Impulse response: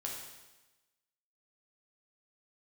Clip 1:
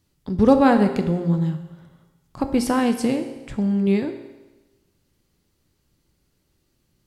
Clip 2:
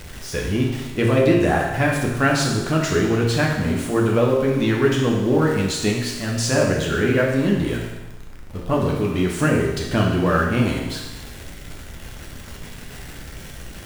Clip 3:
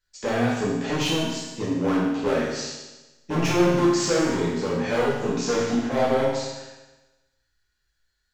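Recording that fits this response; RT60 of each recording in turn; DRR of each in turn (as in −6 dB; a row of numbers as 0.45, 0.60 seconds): 2; 1.1, 1.1, 1.1 seconds; 6.5, −2.5, −8.0 decibels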